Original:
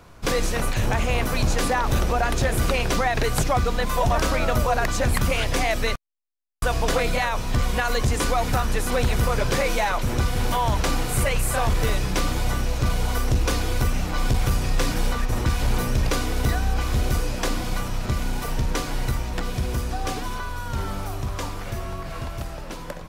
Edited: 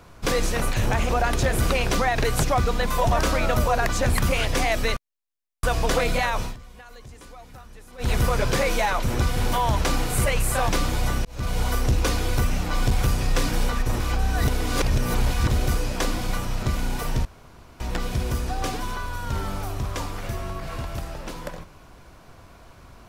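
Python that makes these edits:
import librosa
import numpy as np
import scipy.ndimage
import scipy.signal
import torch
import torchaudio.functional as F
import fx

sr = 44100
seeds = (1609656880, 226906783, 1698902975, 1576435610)

y = fx.edit(x, sr, fx.cut(start_s=1.09, length_s=0.99),
    fx.fade_down_up(start_s=7.43, length_s=1.66, db=-22.0, fade_s=0.12),
    fx.cut(start_s=11.68, length_s=0.44),
    fx.fade_in_span(start_s=12.68, length_s=0.35),
    fx.reverse_span(start_s=15.43, length_s=1.5),
    fx.room_tone_fill(start_s=18.68, length_s=0.55), tone=tone)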